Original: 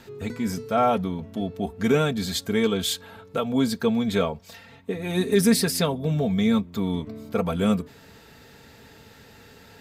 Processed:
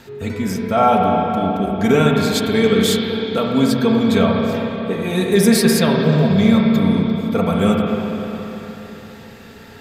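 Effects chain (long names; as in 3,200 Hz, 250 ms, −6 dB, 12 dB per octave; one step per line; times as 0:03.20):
spring reverb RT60 3.7 s, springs 31/52/59 ms, chirp 60 ms, DRR −1 dB
level +5 dB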